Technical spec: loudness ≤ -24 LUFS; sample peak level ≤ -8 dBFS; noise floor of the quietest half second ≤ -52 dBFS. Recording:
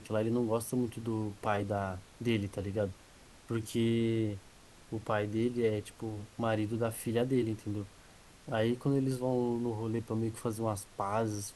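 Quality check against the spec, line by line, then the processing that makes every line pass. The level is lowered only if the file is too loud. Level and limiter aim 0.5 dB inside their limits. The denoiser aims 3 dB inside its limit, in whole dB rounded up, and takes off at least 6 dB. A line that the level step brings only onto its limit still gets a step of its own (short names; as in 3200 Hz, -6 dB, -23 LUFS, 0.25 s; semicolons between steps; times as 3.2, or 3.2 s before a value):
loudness -34.0 LUFS: OK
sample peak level -17.0 dBFS: OK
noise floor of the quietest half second -57 dBFS: OK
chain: none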